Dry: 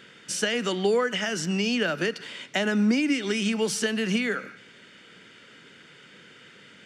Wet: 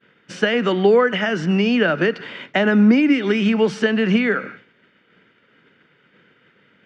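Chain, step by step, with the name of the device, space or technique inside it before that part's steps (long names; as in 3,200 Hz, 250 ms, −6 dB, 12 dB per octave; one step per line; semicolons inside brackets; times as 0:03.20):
hearing-loss simulation (low-pass filter 2,200 Hz 12 dB per octave; downward expander −43 dBFS)
level +9 dB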